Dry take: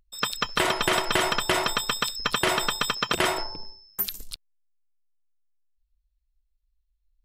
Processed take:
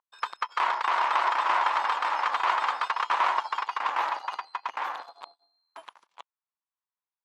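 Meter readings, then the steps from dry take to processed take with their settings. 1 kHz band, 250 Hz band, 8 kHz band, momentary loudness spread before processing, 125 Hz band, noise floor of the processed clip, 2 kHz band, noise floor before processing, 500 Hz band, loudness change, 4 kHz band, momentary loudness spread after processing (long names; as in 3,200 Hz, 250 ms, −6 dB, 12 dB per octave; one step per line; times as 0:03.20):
+5.5 dB, below −20 dB, below −15 dB, 14 LU, below −30 dB, below −85 dBFS, −2.5 dB, −74 dBFS, −9.5 dB, −2.0 dB, −11.0 dB, 11 LU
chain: in parallel at −0.5 dB: downward compressor, threshold −34 dBFS, peak gain reduction 14.5 dB
on the sum: harmonic generator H 6 −8 dB, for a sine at −7 dBFS
delay with pitch and tempo change per echo 368 ms, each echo −2 semitones, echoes 2
four-pole ladder band-pass 1,100 Hz, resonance 60%
level +4 dB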